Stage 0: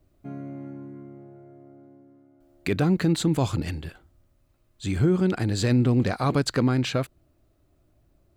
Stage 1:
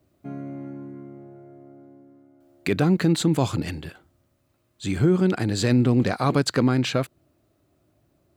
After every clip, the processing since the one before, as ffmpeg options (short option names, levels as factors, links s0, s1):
-af "highpass=110,volume=1.33"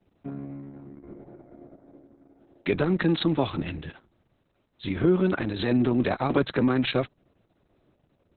-filter_complex "[0:a]acrossover=split=180|740|2200[s0][s1][s2][s3];[s0]volume=50.1,asoftclip=hard,volume=0.02[s4];[s4][s1][s2][s3]amix=inputs=4:normalize=0" -ar 48000 -c:a libopus -b:a 6k